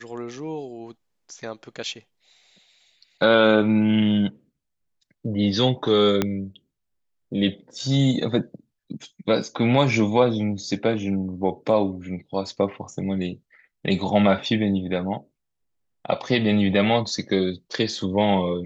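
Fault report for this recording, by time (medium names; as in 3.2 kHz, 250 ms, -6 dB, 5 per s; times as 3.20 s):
6.22 s: pop -7 dBFS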